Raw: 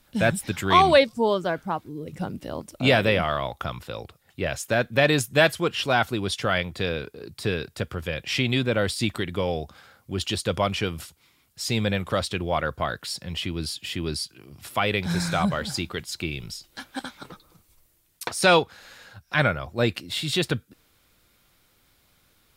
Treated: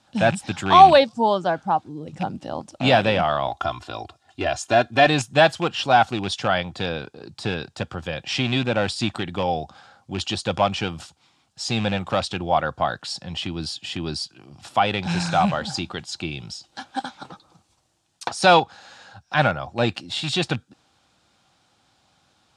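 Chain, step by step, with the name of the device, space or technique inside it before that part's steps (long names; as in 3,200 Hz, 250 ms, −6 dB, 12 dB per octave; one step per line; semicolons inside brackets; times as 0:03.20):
car door speaker with a rattle (loose part that buzzes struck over −27 dBFS, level −22 dBFS; loudspeaker in its box 100–7,800 Hz, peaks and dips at 430 Hz −6 dB, 790 Hz +10 dB, 2,100 Hz −7 dB)
0:03.47–0:05.07: comb filter 2.9 ms, depth 81%
level +2 dB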